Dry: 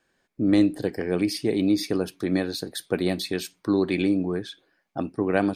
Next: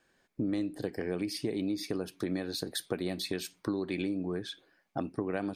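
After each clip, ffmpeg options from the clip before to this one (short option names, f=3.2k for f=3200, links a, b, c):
-af "acompressor=threshold=-30dB:ratio=6"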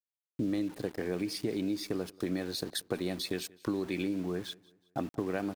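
-af "aeval=exprs='val(0)*gte(abs(val(0)),0.00531)':c=same,aecho=1:1:184|368|552:0.0631|0.0252|0.0101"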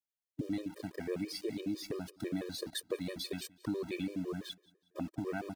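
-af "afftfilt=real='re*gt(sin(2*PI*6*pts/sr)*(1-2*mod(floor(b*sr/1024/320),2)),0)':imag='im*gt(sin(2*PI*6*pts/sr)*(1-2*mod(floor(b*sr/1024/320),2)),0)':win_size=1024:overlap=0.75,volume=-1dB"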